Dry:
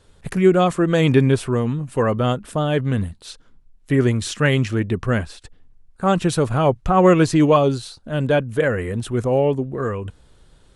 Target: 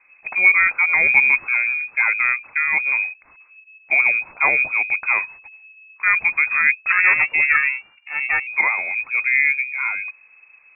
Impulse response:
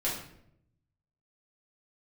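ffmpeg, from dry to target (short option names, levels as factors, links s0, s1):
-filter_complex "[0:a]lowpass=f=2200:t=q:w=0.5098,lowpass=f=2200:t=q:w=0.6013,lowpass=f=2200:t=q:w=0.9,lowpass=f=2200:t=q:w=2.563,afreqshift=-2600,asettb=1/sr,asplit=3[s0][s1][s2];[s0]atrim=end=6.924[s3];[s1]atrim=start=6.92:end=8.47,asetpts=PTS-STARTPTS,afade=t=in:d=0.004:c=qsin,afade=t=out:st=1.546:d=0.004:c=qsin,aeval=exprs='val(0)*sin(2*PI*220*n/s)':c=same[s4];[s2]atrim=start=8.466[s5];[s3][s4]acrossfade=d=0.004:c1=hsin:c2=qsin[s6];[s6][s5]acrossfade=d=0.004:c1=qsin:c2=hsin"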